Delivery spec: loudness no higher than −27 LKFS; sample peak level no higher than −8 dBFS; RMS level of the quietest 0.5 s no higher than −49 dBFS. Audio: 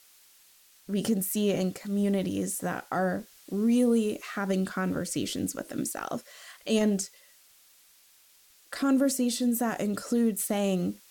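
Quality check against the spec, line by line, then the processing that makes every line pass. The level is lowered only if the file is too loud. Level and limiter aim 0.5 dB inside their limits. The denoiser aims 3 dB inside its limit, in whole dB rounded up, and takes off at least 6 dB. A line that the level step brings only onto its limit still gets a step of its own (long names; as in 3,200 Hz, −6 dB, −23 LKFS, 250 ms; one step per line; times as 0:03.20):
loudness −28.5 LKFS: in spec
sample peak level −13.0 dBFS: in spec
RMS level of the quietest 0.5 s −60 dBFS: in spec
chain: no processing needed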